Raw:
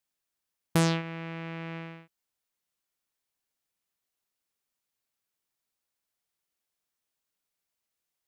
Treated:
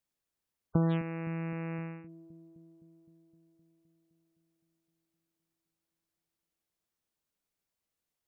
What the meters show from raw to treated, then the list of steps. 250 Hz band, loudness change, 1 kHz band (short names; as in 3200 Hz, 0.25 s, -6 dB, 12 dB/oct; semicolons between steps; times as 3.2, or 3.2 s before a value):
-1.0 dB, -2.5 dB, -6.0 dB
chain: spectral gate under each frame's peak -20 dB strong; tilt shelf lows +4 dB, about 630 Hz; compressor, threshold -24 dBFS, peak gain reduction 6.5 dB; on a send: dark delay 0.258 s, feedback 71%, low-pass 410 Hz, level -15.5 dB